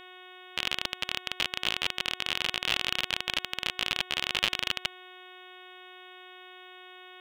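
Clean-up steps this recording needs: de-hum 366.6 Hz, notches 10

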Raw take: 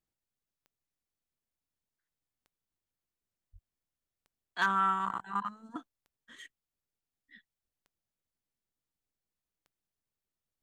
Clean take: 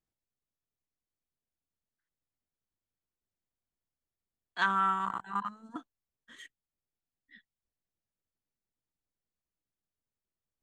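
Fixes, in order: clip repair -18.5 dBFS; de-click; 3.52–3.64 s: high-pass 140 Hz 24 dB/octave

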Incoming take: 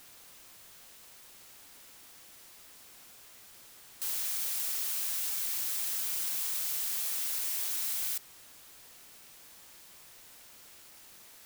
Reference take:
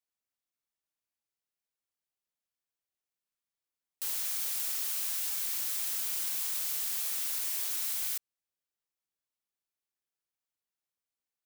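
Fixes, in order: noise reduction 30 dB, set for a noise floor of -54 dBFS

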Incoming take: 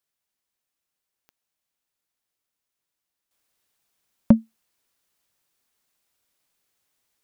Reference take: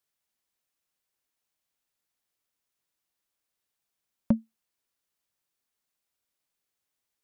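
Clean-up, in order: de-click; gain correction -9 dB, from 3.31 s

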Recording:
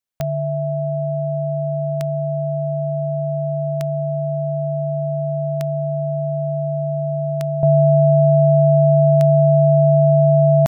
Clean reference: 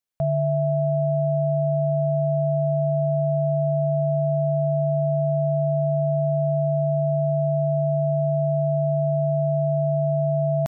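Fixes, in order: de-click; gain correction -9 dB, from 7.63 s

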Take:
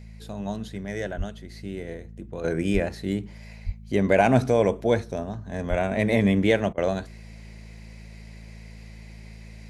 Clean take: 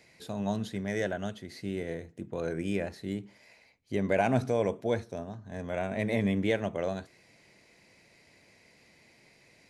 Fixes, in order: de-hum 54.5 Hz, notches 4; de-plosive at 1.17/2.73/3.65/5.69 s; interpolate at 6.73 s, 44 ms; gain correction -7.5 dB, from 2.44 s

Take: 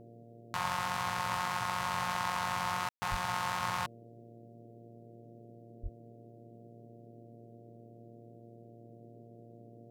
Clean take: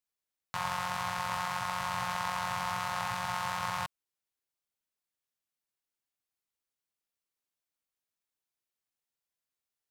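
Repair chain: de-hum 116.4 Hz, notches 6; de-plosive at 3.10/5.82 s; room tone fill 2.89–3.02 s; noise print and reduce 30 dB

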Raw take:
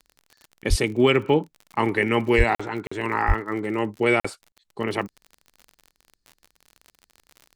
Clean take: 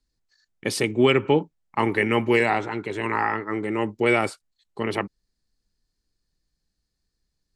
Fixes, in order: de-click; de-plosive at 0.69/2.37/3.27 s; interpolate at 2.55/2.87/4.20/4.52 s, 45 ms

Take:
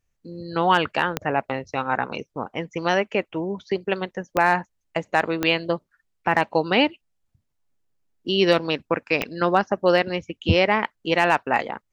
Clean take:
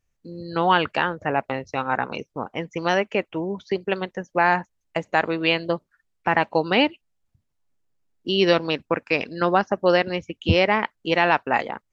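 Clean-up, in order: clip repair -6 dBFS; de-click

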